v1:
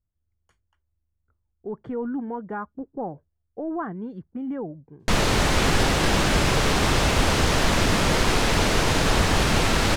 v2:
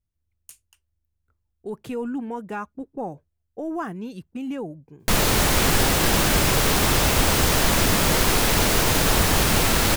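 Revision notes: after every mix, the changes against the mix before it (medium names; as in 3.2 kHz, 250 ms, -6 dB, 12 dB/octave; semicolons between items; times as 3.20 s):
speech: remove Savitzky-Golay filter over 41 samples; master: remove distance through air 64 m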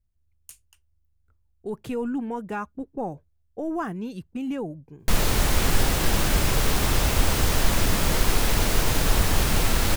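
background -5.5 dB; master: add bass shelf 68 Hz +11 dB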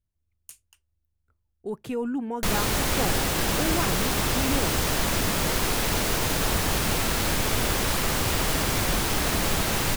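background: entry -2.65 s; master: add bass shelf 68 Hz -11 dB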